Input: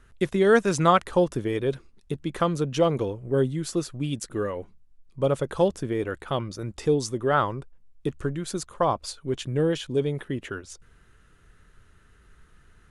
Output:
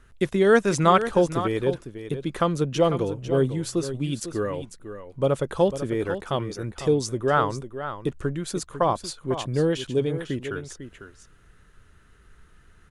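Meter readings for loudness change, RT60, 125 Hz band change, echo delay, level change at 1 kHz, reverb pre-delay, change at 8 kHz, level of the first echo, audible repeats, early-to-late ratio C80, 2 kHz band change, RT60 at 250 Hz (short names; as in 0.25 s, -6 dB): +1.0 dB, none, +1.5 dB, 0.499 s, +1.5 dB, none, +1.5 dB, -11.0 dB, 1, none, +1.5 dB, none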